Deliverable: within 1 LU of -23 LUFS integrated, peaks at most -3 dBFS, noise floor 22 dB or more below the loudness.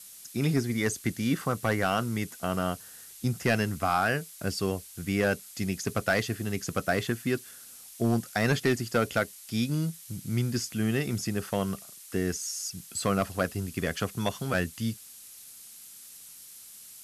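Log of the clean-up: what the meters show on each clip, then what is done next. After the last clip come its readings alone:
clipped samples 0.3%; clipping level -16.5 dBFS; noise floor -49 dBFS; noise floor target -52 dBFS; loudness -29.5 LUFS; peak level -16.5 dBFS; loudness target -23.0 LUFS
-> clip repair -16.5 dBFS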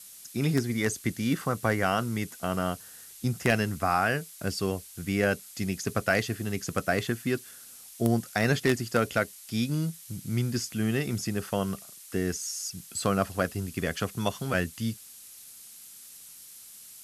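clipped samples 0.0%; noise floor -49 dBFS; noise floor target -52 dBFS
-> noise reduction 6 dB, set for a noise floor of -49 dBFS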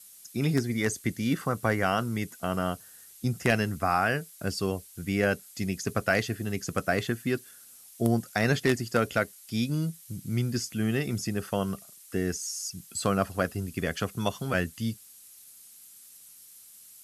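noise floor -52 dBFS; loudness -29.5 LUFS; peak level -7.5 dBFS; loudness target -23.0 LUFS
-> trim +6.5 dB; peak limiter -3 dBFS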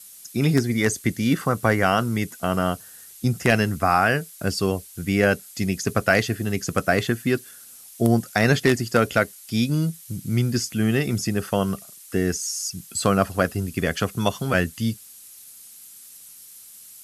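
loudness -23.0 LUFS; peak level -3.0 dBFS; noise floor -45 dBFS

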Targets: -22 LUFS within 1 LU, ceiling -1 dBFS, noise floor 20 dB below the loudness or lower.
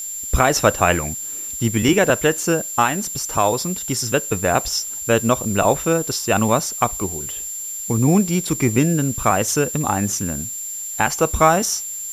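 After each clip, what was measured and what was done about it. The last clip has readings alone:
steady tone 7.3 kHz; tone level -27 dBFS; noise floor -29 dBFS; noise floor target -40 dBFS; loudness -19.5 LUFS; peak level -1.5 dBFS; loudness target -22.0 LUFS
-> band-stop 7.3 kHz, Q 30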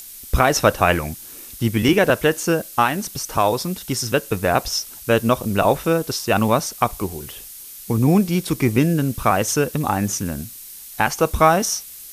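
steady tone not found; noise floor -39 dBFS; noise floor target -40 dBFS
-> noise print and reduce 6 dB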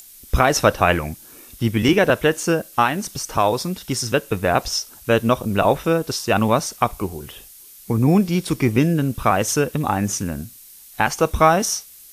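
noise floor -44 dBFS; loudness -20.0 LUFS; peak level -1.5 dBFS; loudness target -22.0 LUFS
-> trim -2 dB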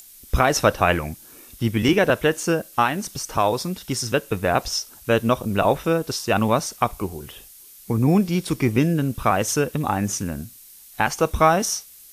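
loudness -22.0 LUFS; peak level -3.5 dBFS; noise floor -46 dBFS

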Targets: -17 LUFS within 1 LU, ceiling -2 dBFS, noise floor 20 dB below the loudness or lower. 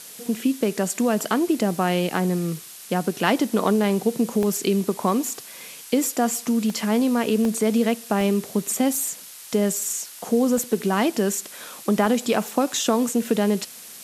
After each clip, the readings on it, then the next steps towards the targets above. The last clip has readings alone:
dropouts 8; longest dropout 1.2 ms; noise floor -41 dBFS; noise floor target -43 dBFS; loudness -23.0 LUFS; peak level -5.0 dBFS; loudness target -17.0 LUFS
-> interpolate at 1.59/4.43/6.70/7.45/8.21/8.95/10.58/12.06 s, 1.2 ms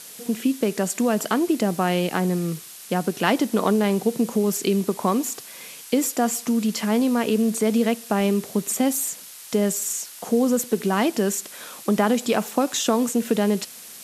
dropouts 0; noise floor -41 dBFS; noise floor target -43 dBFS
-> noise print and reduce 6 dB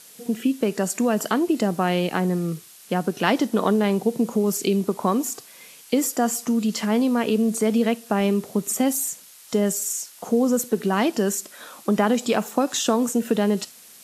noise floor -47 dBFS; loudness -23.0 LUFS; peak level -5.0 dBFS; loudness target -17.0 LUFS
-> trim +6 dB; peak limiter -2 dBFS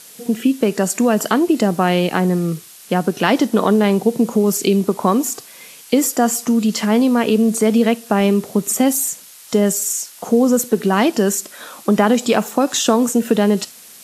loudness -17.0 LUFS; peak level -2.0 dBFS; noise floor -41 dBFS

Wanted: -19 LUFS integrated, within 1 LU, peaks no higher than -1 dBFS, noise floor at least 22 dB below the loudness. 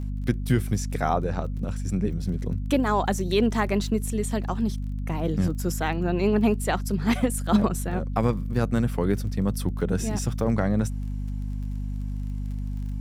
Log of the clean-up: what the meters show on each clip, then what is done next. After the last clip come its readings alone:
tick rate 24 per s; hum 50 Hz; highest harmonic 250 Hz; hum level -27 dBFS; loudness -26.5 LUFS; peak level -9.0 dBFS; loudness target -19.0 LUFS
-> de-click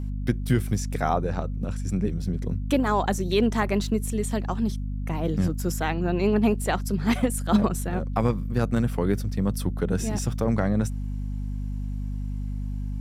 tick rate 0.077 per s; hum 50 Hz; highest harmonic 250 Hz; hum level -27 dBFS
-> de-hum 50 Hz, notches 5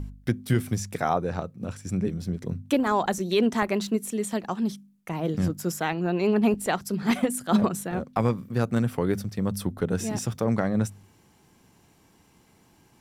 hum not found; loudness -27.0 LUFS; peak level -9.5 dBFS; loudness target -19.0 LUFS
-> trim +8 dB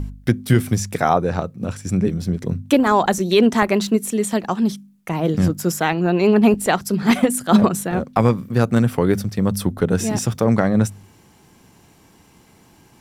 loudness -19.0 LUFS; peak level -1.5 dBFS; noise floor -52 dBFS

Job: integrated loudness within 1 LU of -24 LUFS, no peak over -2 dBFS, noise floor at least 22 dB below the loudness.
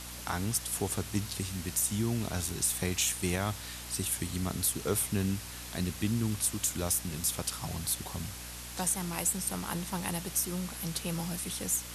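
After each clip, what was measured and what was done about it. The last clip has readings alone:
hum 60 Hz; highest harmonic 300 Hz; hum level -47 dBFS; noise floor -43 dBFS; noise floor target -54 dBFS; loudness -32.0 LUFS; peak level -16.0 dBFS; loudness target -24.0 LUFS
-> de-hum 60 Hz, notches 5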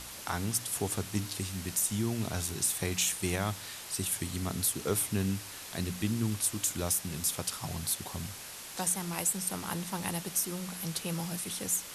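hum not found; noise floor -45 dBFS; noise floor target -54 dBFS
-> noise print and reduce 9 dB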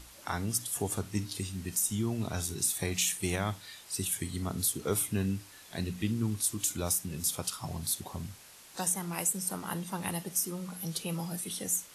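noise floor -53 dBFS; noise floor target -55 dBFS
-> noise print and reduce 6 dB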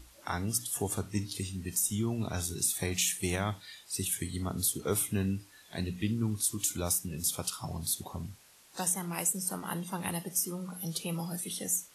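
noise floor -58 dBFS; loudness -32.5 LUFS; peak level -16.0 dBFS; loudness target -24.0 LUFS
-> trim +8.5 dB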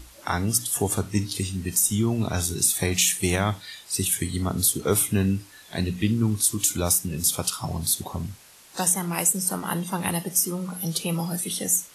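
loudness -24.0 LUFS; peak level -7.5 dBFS; noise floor -50 dBFS

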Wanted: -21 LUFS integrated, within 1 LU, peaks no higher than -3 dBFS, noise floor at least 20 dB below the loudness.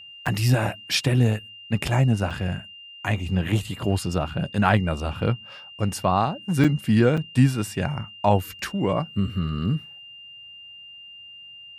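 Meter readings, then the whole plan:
dropouts 4; longest dropout 5.5 ms; steady tone 2.8 kHz; tone level -41 dBFS; loudness -24.0 LUFS; peak level -4.0 dBFS; loudness target -21.0 LUFS
-> interpolate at 0.26/2.30/6.64/7.17 s, 5.5 ms; band-stop 2.8 kHz, Q 30; trim +3 dB; peak limiter -3 dBFS

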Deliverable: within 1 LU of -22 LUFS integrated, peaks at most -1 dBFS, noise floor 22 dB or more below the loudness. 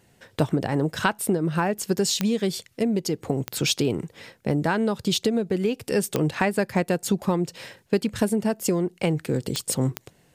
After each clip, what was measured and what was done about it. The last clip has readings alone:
clicks found 5; loudness -25.0 LUFS; peak level -7.5 dBFS; loudness target -22.0 LUFS
-> de-click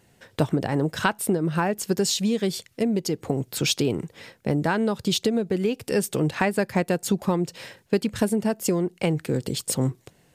clicks found 0; loudness -25.0 LUFS; peak level -7.5 dBFS; loudness target -22.0 LUFS
-> trim +3 dB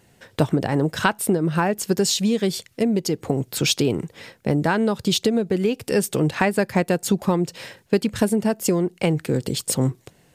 loudness -22.0 LUFS; peak level -4.5 dBFS; noise floor -58 dBFS

